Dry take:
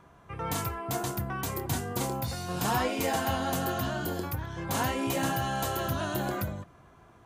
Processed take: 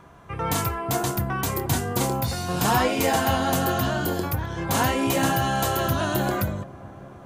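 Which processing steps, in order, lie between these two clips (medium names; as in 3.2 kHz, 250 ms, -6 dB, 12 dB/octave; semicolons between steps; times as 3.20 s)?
feedback echo behind a low-pass 415 ms, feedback 79%, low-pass 970 Hz, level -21 dB; trim +7 dB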